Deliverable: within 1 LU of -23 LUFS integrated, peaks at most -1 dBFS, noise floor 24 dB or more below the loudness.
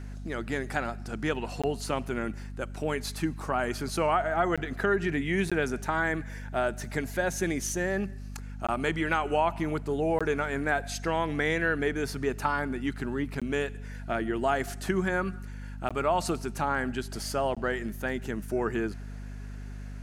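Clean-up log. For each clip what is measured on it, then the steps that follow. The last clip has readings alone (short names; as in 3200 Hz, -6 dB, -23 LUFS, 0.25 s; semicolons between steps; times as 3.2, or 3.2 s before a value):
dropouts 8; longest dropout 16 ms; hum 50 Hz; harmonics up to 250 Hz; hum level -37 dBFS; loudness -30.0 LUFS; peak -11.0 dBFS; loudness target -23.0 LUFS
-> interpolate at 1.62/4.56/5.5/8.67/10.19/13.4/15.89/17.55, 16 ms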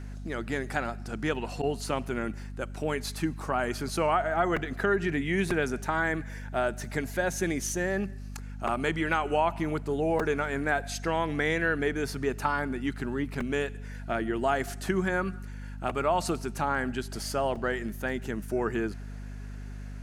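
dropouts 0; hum 50 Hz; harmonics up to 250 Hz; hum level -37 dBFS
-> notches 50/100/150/200/250 Hz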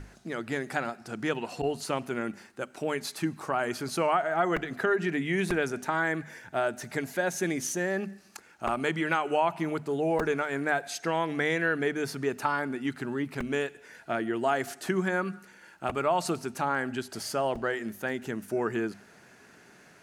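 hum none; loudness -30.5 LUFS; peak -11.5 dBFS; loudness target -23.0 LUFS
-> gain +7.5 dB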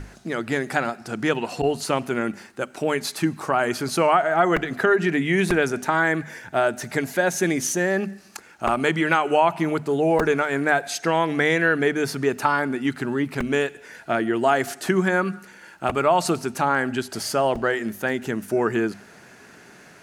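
loudness -23.0 LUFS; peak -4.0 dBFS; noise floor -48 dBFS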